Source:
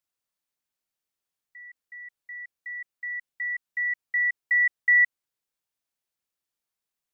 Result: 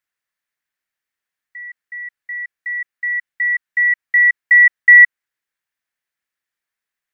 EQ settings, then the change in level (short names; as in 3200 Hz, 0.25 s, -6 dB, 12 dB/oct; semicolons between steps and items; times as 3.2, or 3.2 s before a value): bell 1800 Hz +14.5 dB 0.92 oct; -1.0 dB